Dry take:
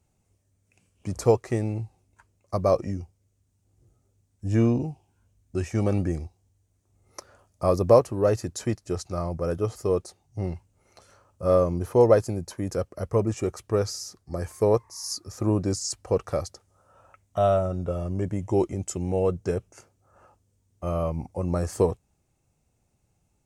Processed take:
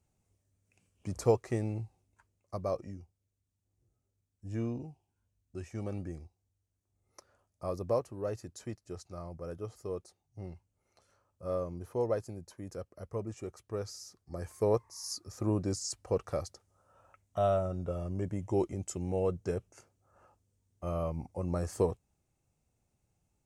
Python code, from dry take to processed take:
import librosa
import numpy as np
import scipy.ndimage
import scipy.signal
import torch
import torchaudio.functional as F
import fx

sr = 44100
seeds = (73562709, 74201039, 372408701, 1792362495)

y = fx.gain(x, sr, db=fx.line((1.8, -6.5), (2.96, -14.0), (13.62, -14.0), (14.71, -7.0)))